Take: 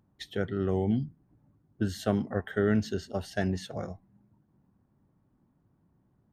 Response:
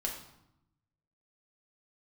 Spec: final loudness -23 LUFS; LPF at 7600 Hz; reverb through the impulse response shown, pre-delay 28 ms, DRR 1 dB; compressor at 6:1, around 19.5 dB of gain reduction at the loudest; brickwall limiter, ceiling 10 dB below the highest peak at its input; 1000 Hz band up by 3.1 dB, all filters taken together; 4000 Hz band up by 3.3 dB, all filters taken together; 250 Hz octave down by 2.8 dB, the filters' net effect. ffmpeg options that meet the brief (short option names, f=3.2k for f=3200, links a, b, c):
-filter_complex "[0:a]lowpass=7.6k,equalizer=f=250:t=o:g=-4,equalizer=f=1k:t=o:g=5,equalizer=f=4k:t=o:g=4,acompressor=threshold=-44dB:ratio=6,alimiter=level_in=15.5dB:limit=-24dB:level=0:latency=1,volume=-15.5dB,asplit=2[a][b];[1:a]atrim=start_sample=2205,adelay=28[c];[b][c]afir=irnorm=-1:irlink=0,volume=-3.5dB[d];[a][d]amix=inputs=2:normalize=0,volume=26dB"